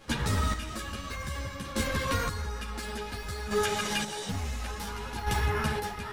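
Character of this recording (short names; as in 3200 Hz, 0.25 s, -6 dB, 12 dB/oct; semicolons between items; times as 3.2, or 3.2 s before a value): chopped level 0.57 Hz, depth 60%, duty 30%; a shimmering, thickened sound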